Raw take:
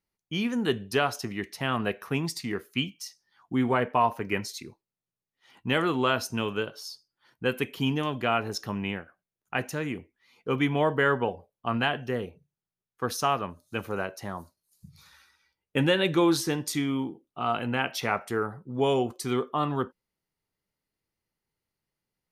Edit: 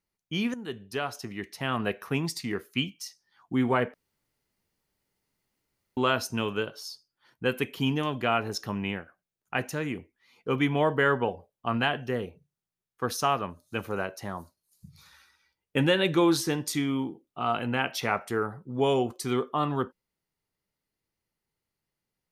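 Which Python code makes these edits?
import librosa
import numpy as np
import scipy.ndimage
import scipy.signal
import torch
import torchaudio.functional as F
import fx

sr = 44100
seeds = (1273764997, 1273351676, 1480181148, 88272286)

y = fx.edit(x, sr, fx.fade_in_from(start_s=0.54, length_s=1.42, floor_db=-13.0),
    fx.room_tone_fill(start_s=3.94, length_s=2.03), tone=tone)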